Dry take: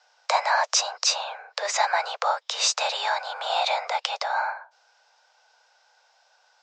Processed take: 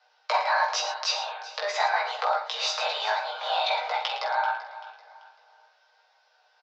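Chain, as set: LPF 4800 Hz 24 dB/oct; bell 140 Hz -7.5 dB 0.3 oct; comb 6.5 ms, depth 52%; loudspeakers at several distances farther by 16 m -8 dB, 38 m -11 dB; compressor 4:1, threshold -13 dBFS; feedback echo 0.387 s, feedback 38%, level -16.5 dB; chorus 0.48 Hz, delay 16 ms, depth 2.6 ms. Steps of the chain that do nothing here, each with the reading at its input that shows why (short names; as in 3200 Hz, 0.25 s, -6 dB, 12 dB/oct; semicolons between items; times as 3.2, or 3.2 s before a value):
bell 140 Hz: input band starts at 400 Hz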